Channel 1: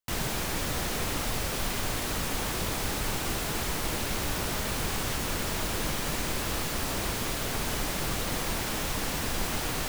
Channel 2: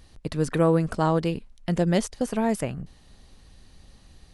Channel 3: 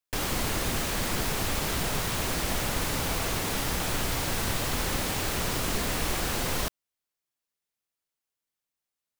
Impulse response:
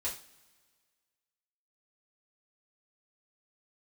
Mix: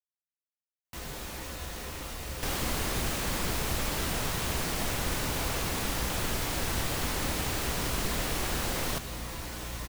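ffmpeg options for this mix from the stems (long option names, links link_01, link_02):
-filter_complex "[0:a]adelay=850,volume=-9dB,asplit=2[link_01][link_02];[link_02]volume=-4.5dB[link_03];[2:a]aeval=exprs='val(0)+0.0112*(sin(2*PI*60*n/s)+sin(2*PI*2*60*n/s)/2+sin(2*PI*3*60*n/s)/3+sin(2*PI*4*60*n/s)/4+sin(2*PI*5*60*n/s)/5)':channel_layout=same,adelay=2300,volume=-3dB[link_04];[link_01]alimiter=level_in=11dB:limit=-24dB:level=0:latency=1:release=455,volume=-11dB,volume=0dB[link_05];[3:a]atrim=start_sample=2205[link_06];[link_03][link_06]afir=irnorm=-1:irlink=0[link_07];[link_04][link_05][link_07]amix=inputs=3:normalize=0"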